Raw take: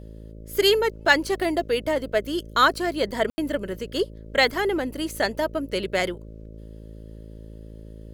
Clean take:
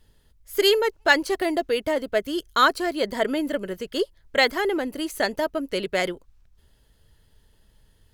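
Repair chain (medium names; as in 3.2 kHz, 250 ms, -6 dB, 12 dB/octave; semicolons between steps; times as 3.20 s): de-hum 54.4 Hz, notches 11; room tone fill 3.30–3.38 s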